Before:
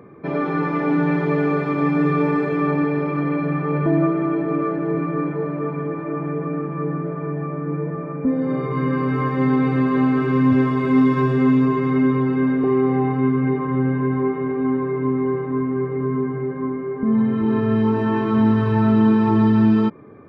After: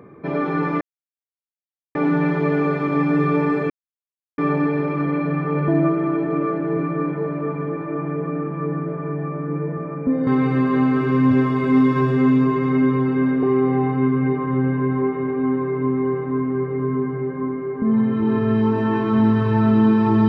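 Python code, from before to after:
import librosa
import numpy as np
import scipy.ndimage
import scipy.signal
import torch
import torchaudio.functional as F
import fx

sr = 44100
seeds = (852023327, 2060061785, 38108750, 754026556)

y = fx.edit(x, sr, fx.insert_silence(at_s=0.81, length_s=1.14),
    fx.insert_silence(at_s=2.56, length_s=0.68),
    fx.cut(start_s=8.45, length_s=1.03), tone=tone)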